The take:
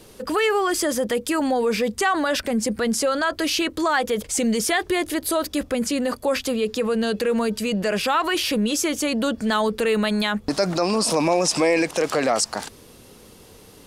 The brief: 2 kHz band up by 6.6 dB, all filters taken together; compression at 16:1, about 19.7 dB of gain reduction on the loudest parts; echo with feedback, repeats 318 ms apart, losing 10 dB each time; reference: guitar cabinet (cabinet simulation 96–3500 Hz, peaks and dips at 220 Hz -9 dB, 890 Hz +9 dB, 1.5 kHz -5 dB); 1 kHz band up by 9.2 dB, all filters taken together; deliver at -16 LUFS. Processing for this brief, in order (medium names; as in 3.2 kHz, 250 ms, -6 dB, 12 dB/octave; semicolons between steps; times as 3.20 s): peaking EQ 1 kHz +4.5 dB; peaking EQ 2 kHz +9 dB; compression 16:1, threshold -30 dBFS; cabinet simulation 96–3500 Hz, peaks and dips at 220 Hz -9 dB, 890 Hz +9 dB, 1.5 kHz -5 dB; feedback delay 318 ms, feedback 32%, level -10 dB; trim +18 dB